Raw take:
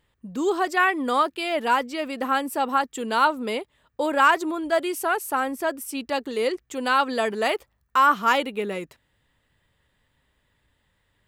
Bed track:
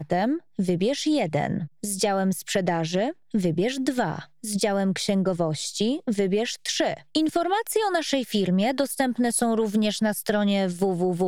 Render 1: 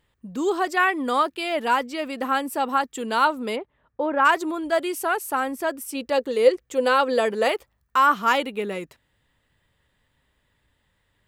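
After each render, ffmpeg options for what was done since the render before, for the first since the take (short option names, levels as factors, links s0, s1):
-filter_complex "[0:a]asplit=3[s0][s1][s2];[s0]afade=t=out:st=3.55:d=0.02[s3];[s1]lowpass=1700,afade=t=in:st=3.55:d=0.02,afade=t=out:st=4.24:d=0.02[s4];[s2]afade=t=in:st=4.24:d=0.02[s5];[s3][s4][s5]amix=inputs=3:normalize=0,asettb=1/sr,asplit=3[s6][s7][s8];[s6]atrim=end=5.954[s9];[s7]atrim=start=5.95:end=7.49,asetpts=PTS-STARTPTS,afade=t=in:d=0.004:c=qsin,afade=t=out:st=1.536:d=0.004:c=qsin,equalizer=f=510:t=o:w=0.25:g=11.5[s10];[s8]atrim=start=7.486[s11];[s9][s10]acrossfade=d=0.004:c1=hsin:c2=qsin[s12];[s12][s11]acrossfade=d=0.004:c1=qsin:c2=hsin"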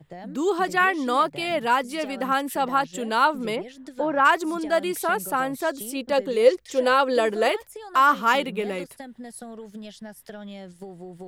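-filter_complex "[1:a]volume=0.15[s0];[0:a][s0]amix=inputs=2:normalize=0"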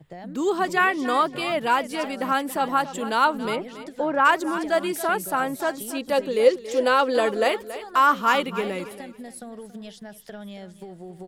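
-af "aecho=1:1:279|558|837:0.2|0.0459|0.0106"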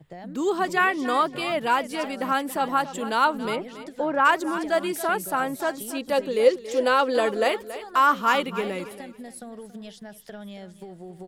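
-af "volume=0.891"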